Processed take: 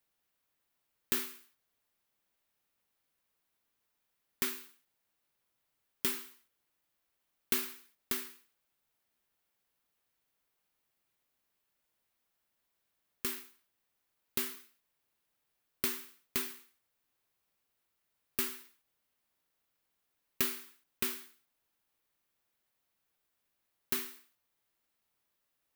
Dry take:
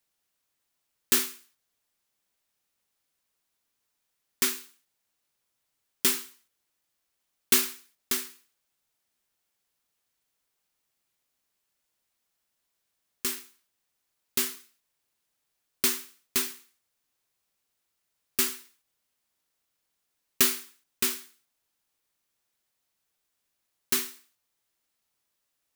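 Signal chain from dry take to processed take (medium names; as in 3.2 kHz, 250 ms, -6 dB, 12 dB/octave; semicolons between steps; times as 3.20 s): peaking EQ 6.9 kHz -7 dB 1.7 oct; compression 2:1, threshold -34 dBFS, peak gain reduction 9 dB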